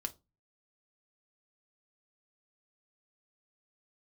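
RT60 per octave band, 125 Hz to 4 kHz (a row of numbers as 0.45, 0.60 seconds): 0.55, 0.35, 0.25, 0.25, 0.15, 0.20 seconds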